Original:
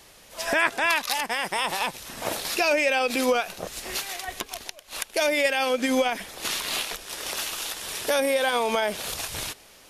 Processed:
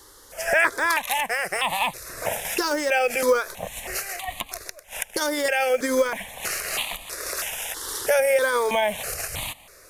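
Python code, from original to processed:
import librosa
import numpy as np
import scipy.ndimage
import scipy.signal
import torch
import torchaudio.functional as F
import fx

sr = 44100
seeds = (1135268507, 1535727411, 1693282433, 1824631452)

p1 = fx.quant_float(x, sr, bits=2)
p2 = x + (p1 * librosa.db_to_amplitude(-7.0))
p3 = fx.phaser_held(p2, sr, hz=3.1, low_hz=670.0, high_hz=1500.0)
y = p3 * librosa.db_to_amplitude(1.5)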